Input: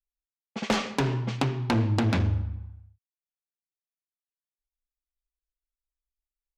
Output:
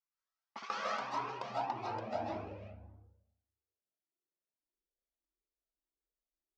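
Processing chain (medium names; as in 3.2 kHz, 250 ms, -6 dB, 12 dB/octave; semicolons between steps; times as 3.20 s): rattle on loud lows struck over -27 dBFS, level -30 dBFS; peaking EQ 5.4 kHz +14 dB 0.97 oct; compression 5:1, threshold -36 dBFS, peak gain reduction 16.5 dB; band-pass sweep 1.2 kHz -> 350 Hz, 0.69–3.67 s; algorithmic reverb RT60 0.78 s, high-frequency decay 0.4×, pre-delay 115 ms, DRR -6.5 dB; Shepard-style flanger rising 1.7 Hz; trim +8.5 dB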